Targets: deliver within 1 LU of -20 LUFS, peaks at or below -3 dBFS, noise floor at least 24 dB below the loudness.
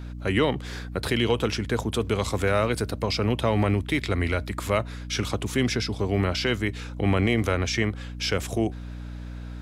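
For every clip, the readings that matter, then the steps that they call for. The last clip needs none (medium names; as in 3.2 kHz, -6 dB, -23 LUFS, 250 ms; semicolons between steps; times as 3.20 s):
hum 60 Hz; highest harmonic 300 Hz; hum level -33 dBFS; loudness -26.0 LUFS; peak level -11.0 dBFS; loudness target -20.0 LUFS
-> de-hum 60 Hz, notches 5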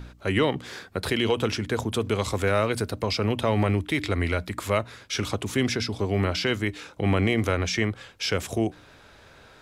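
hum not found; loudness -26.0 LUFS; peak level -11.0 dBFS; loudness target -20.0 LUFS
-> trim +6 dB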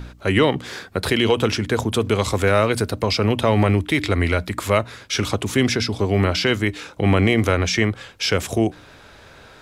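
loudness -20.0 LUFS; peak level -5.0 dBFS; noise floor -46 dBFS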